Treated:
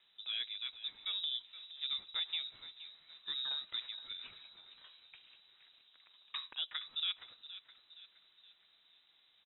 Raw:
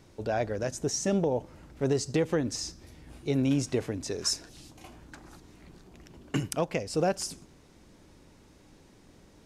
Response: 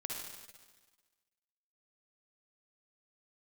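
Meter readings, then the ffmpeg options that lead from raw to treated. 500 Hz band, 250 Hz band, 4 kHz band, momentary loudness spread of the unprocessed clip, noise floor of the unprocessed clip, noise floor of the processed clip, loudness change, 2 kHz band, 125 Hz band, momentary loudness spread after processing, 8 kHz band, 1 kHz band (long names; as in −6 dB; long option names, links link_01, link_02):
below −40 dB, below −40 dB, +3.0 dB, 22 LU, −57 dBFS, −70 dBFS, −9.5 dB, −9.0 dB, below −40 dB, 20 LU, below −40 dB, −19.5 dB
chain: -filter_complex "[0:a]lowshelf=frequency=290:gain=-9.5,asplit=5[link_01][link_02][link_03][link_04][link_05];[link_02]adelay=469,afreqshift=-50,volume=-14dB[link_06];[link_03]adelay=938,afreqshift=-100,volume=-20.7dB[link_07];[link_04]adelay=1407,afreqshift=-150,volume=-27.5dB[link_08];[link_05]adelay=1876,afreqshift=-200,volume=-34.2dB[link_09];[link_01][link_06][link_07][link_08][link_09]amix=inputs=5:normalize=0,lowpass=frequency=3400:width_type=q:width=0.5098,lowpass=frequency=3400:width_type=q:width=0.6013,lowpass=frequency=3400:width_type=q:width=0.9,lowpass=frequency=3400:width_type=q:width=2.563,afreqshift=-4000,volume=-8.5dB"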